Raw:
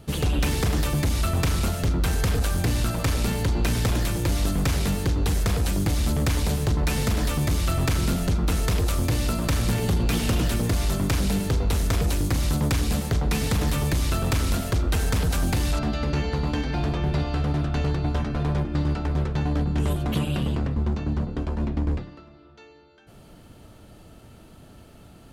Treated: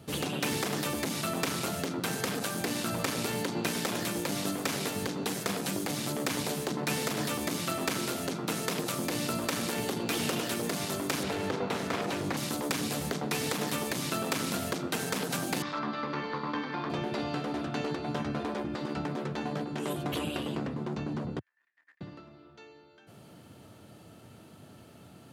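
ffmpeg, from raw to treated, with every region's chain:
-filter_complex "[0:a]asettb=1/sr,asplit=3[a][b][c];[a]atrim=end=11.234[d];[b]atrim=start=11.23:end=12.37,asetpts=PTS-STARTPTS,afade=t=in:d=0.004:c=qsin,afade=t=out:st=1.136:d=0.004:c=qsin,highshelf=f=6.7k:g=-5,asplit=2[e][f];[f]highpass=f=720:p=1,volume=15dB,asoftclip=type=tanh:threshold=-16.5dB[g];[e][g]amix=inputs=2:normalize=0,lowpass=f=1.6k:p=1,volume=-6dB[h];[c]atrim=start=12.366[i];[d][h]acrossfade=d=0.004:c1=hsin:c2=qsin[j];[j][i]acrossfade=d=0.004:c1=qsin:c2=hsin,asettb=1/sr,asplit=3[k][l][m];[k]atrim=end=15.624[n];[l]atrim=start=15.62:end=16.9,asetpts=PTS-STARTPTS,afade=t=in:d=0.004:c=qsin,afade=t=out:st=1.276:d=0.004:c=qsin,aeval=exprs='val(0)+0.5*0.0141*sgn(val(0))':c=same,highpass=310,equalizer=f=410:t=q:w=4:g=-5,equalizer=f=680:t=q:w=4:g=-9,equalizer=f=1.1k:t=q:w=4:g=9,equalizer=f=2.8k:t=q:w=4:g=-8,equalizer=f=4.1k:t=q:w=4:g=-4,lowpass=f=4.3k:w=0.5412,lowpass=f=4.3k:w=1.3066[o];[m]atrim=start=16.896[p];[n][o]acrossfade=d=0.004:c1=hsin:c2=qsin[q];[q][p]acrossfade=d=0.004:c1=qsin:c2=hsin,asettb=1/sr,asplit=3[r][s][t];[r]atrim=end=21.394[u];[s]atrim=start=21.39:end=22.01,asetpts=PTS-STARTPTS,afade=t=in:d=0.004:c=qsin,afade=t=out:st=0.616:d=0.004:c=qsin,agate=range=-40dB:threshold=-20dB:ratio=16:release=100:detection=peak,highpass=f=1.8k:t=q:w=16[v];[t]atrim=start=22.006[w];[u][v]acrossfade=d=0.004:c1=hsin:c2=qsin[x];[x][w]acrossfade=d=0.004:c1=qsin:c2=hsin,afftfilt=real='re*lt(hypot(re,im),0.355)':imag='im*lt(hypot(re,im),0.355)':win_size=1024:overlap=0.75,highpass=f=100:w=0.5412,highpass=f=100:w=1.3066,volume=-2.5dB"

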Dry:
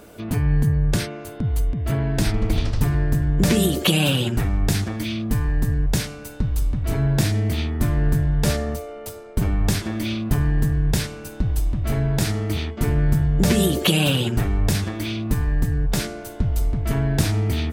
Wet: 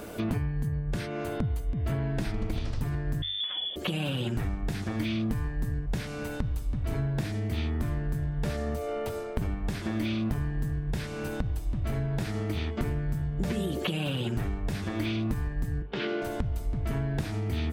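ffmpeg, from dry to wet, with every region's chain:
-filter_complex "[0:a]asettb=1/sr,asplit=3[a][b][c];[a]atrim=end=3.224[d];[b]atrim=start=3.22:end=3.76,asetpts=PTS-STARTPTS,afade=t=in:d=0.004:c=qsin,afade=t=out:st=0.536:d=0.004:c=qsin,equalizer=f=190:w=6.7:g=13,lowpass=f=3.1k:t=q:w=0.5098,lowpass=f=3.1k:t=q:w=0.6013,lowpass=f=3.1k:t=q:w=0.9,lowpass=f=3.1k:t=q:w=2.563,afreqshift=-3600[e];[c]atrim=start=3.756[f];[d][e]acrossfade=d=0.004:c1=hsin:c2=qsin[g];[g][f]acrossfade=d=0.004:c1=qsin:c2=hsin,asettb=1/sr,asplit=3[h][i][j];[h]atrim=end=15.824[k];[i]atrim=start=15.82:end=16.22,asetpts=PTS-STARTPTS,afade=t=in:d=0.004:c=qsin,afade=t=out:st=0.396:d=0.004:c=qsin,acompressor=threshold=-27dB:ratio=2:attack=3.2:release=140:knee=1:detection=peak,highpass=250,equalizer=f=390:t=q:w=4:g=8,equalizer=f=650:t=q:w=4:g=-5,equalizer=f=3k:t=q:w=4:g=7,lowpass=f=4k:w=0.5412,lowpass=f=4k:w=1.3066,asplit=2[l][m];[m]adelay=15,volume=-12.5dB[n];[l][n]amix=inputs=2:normalize=0,atrim=end_sample=17640[o];[j]atrim=start=16.216[p];[k][o]acrossfade=d=0.004:c1=hsin:c2=qsin[q];[q][p]acrossfade=d=0.004:c1=qsin:c2=hsin,acompressor=threshold=-30dB:ratio=16,bandreject=f=50:t=h:w=6,bandreject=f=100:t=h:w=6,acrossover=split=3300[r][s];[s]acompressor=threshold=-52dB:ratio=4:attack=1:release=60[t];[r][t]amix=inputs=2:normalize=0,volume=4.5dB"

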